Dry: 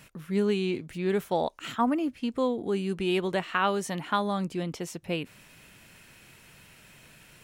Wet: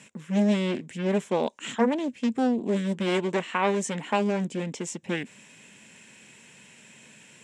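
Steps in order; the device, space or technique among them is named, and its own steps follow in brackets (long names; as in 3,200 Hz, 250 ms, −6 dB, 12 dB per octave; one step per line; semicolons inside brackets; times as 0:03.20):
full-range speaker at full volume (highs frequency-modulated by the lows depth 0.78 ms; loudspeaker in its box 200–8,700 Hz, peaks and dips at 220 Hz +7 dB, 320 Hz −4 dB, 690 Hz −6 dB, 1,300 Hz −10 dB, 4,500 Hz −7 dB, 7,500 Hz +9 dB)
level +3.5 dB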